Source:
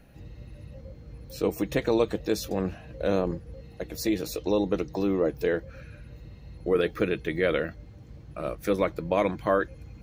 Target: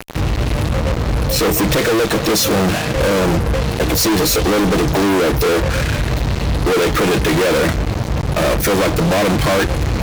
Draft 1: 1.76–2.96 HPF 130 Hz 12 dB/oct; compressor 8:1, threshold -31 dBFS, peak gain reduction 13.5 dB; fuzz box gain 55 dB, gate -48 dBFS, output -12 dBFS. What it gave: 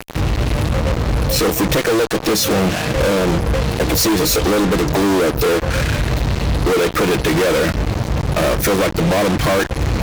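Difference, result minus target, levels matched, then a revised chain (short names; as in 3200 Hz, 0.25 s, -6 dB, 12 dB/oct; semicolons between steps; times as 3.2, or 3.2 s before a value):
compressor: peak gain reduction +7 dB
1.76–2.96 HPF 130 Hz 12 dB/oct; compressor 8:1, threshold -23 dBFS, peak gain reduction 6.5 dB; fuzz box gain 55 dB, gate -48 dBFS, output -12 dBFS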